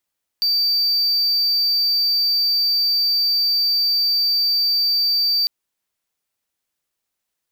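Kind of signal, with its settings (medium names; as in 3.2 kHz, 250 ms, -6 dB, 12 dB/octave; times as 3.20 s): tone triangle 4.64 kHz -13.5 dBFS 5.05 s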